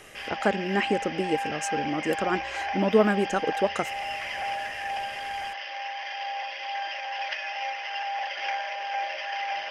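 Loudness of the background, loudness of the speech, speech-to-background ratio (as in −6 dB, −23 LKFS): −32.0 LKFS, −27.5 LKFS, 4.5 dB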